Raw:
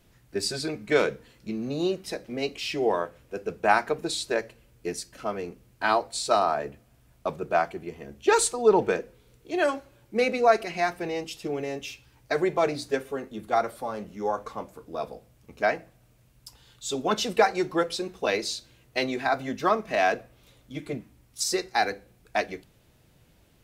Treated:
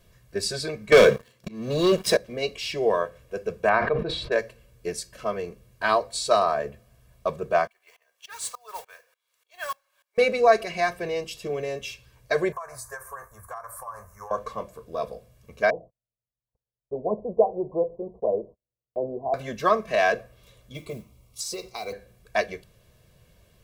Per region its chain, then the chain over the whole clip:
0.92–2.17 s: high-pass 92 Hz 24 dB/octave + waveshaping leveller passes 3 + slow attack 493 ms
3.69–4.32 s: distance through air 400 m + decay stretcher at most 59 dB/s
7.67–10.18 s: high-pass 850 Hz 24 dB/octave + modulation noise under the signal 13 dB + sawtooth tremolo in dB swelling 3.4 Hz, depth 24 dB
12.52–14.31 s: FFT filter 110 Hz 0 dB, 160 Hz -17 dB, 270 Hz -26 dB, 440 Hz -16 dB, 700 Hz -2 dB, 1 kHz +11 dB, 1.7 kHz +2 dB, 3.2 kHz -28 dB, 6.1 kHz +1 dB, 10 kHz +10 dB + compression, threshold -35 dBFS
15.70–19.34 s: steep low-pass 910 Hz 72 dB/octave + bass shelf 210 Hz -4.5 dB + gate -56 dBFS, range -36 dB
20.74–21.93 s: Butterworth band-stop 1.7 kHz, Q 2.6 + compression 4:1, threshold -31 dBFS + modulation noise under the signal 24 dB
whole clip: peaking EQ 220 Hz +4.5 dB 0.3 oct; comb 1.8 ms, depth 65%

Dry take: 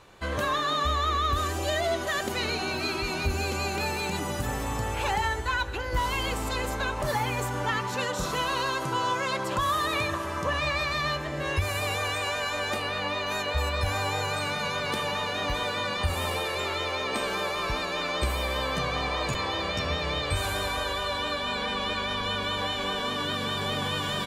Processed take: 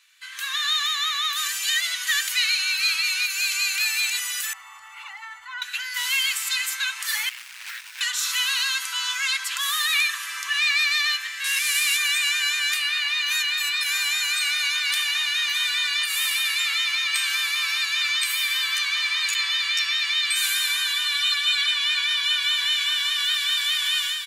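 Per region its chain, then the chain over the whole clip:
4.53–5.62 s: Savitzky-Golay filter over 65 samples + level flattener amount 70%
7.29–8.01 s: median filter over 41 samples + rippled EQ curve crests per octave 1.6, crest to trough 8 dB + loudspeaker Doppler distortion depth 0.3 ms
11.44–11.97 s: one-bit delta coder 64 kbps, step -29 dBFS + steep high-pass 890 Hz 96 dB/octave
21.12–21.71 s: high-pass 570 Hz + comb 3.6 ms, depth 66%
whole clip: inverse Chebyshev high-pass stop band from 530 Hz, stop band 60 dB; treble shelf 8.1 kHz +5.5 dB; level rider gain up to 10 dB

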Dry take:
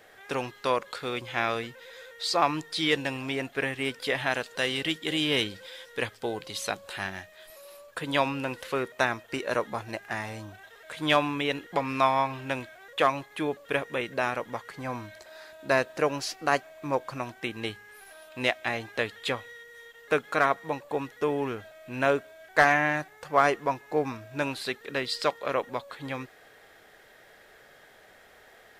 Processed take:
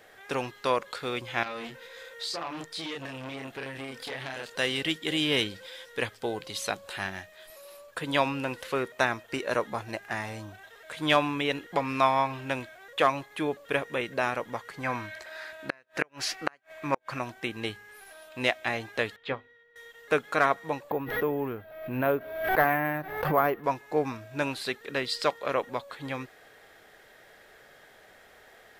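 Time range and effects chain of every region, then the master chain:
1.43–4.50 s: doubling 30 ms -2 dB + compression 16:1, threshold -28 dBFS + transformer saturation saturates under 3.5 kHz
14.83–17.19 s: peaking EQ 1.9 kHz +9.5 dB 1.6 oct + inverted gate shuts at -10 dBFS, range -38 dB
19.16–19.76 s: distance through air 270 m + hum notches 50/100/150/200/250/300/350/400/450 Hz + upward expansion, over -48 dBFS
20.90–23.64 s: tape spacing loss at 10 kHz 31 dB + careless resampling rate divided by 3×, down filtered, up hold + swell ahead of each attack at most 64 dB/s
whole clip: none

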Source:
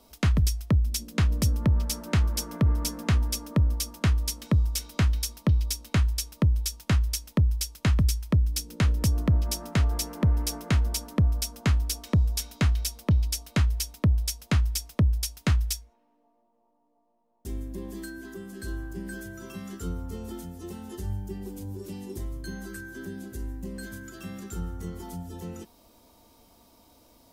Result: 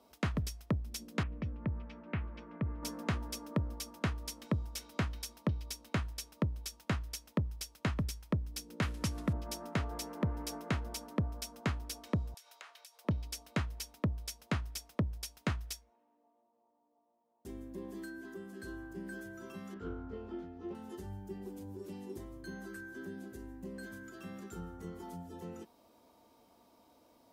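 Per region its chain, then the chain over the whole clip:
1.23–2.83 s: four-pole ladder low-pass 2.9 kHz, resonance 45% + bass shelf 260 Hz +8.5 dB
8.82–9.33 s: CVSD coder 64 kbps + FFT filter 280 Hz 0 dB, 420 Hz -4 dB, 2.2 kHz +5 dB
12.34–13.05 s: Bessel high-pass 820 Hz, order 6 + compression 12:1, threshold -39 dBFS
19.74–20.75 s: distance through air 260 m + doubling 20 ms -3 dB + loudspeaker Doppler distortion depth 0.21 ms
whole clip: high-pass 300 Hz 6 dB/octave; treble shelf 2.7 kHz -11 dB; trim -2.5 dB

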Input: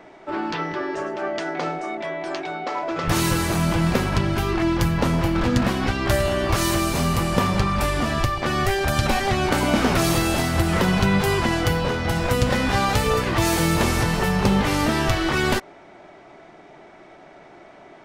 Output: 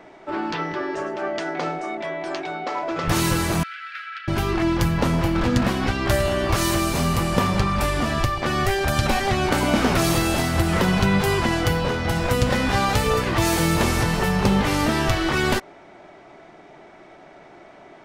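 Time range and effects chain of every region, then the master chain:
3.63–4.28 s: Chebyshev high-pass 1.3 kHz, order 8 + distance through air 380 m
whole clip: none

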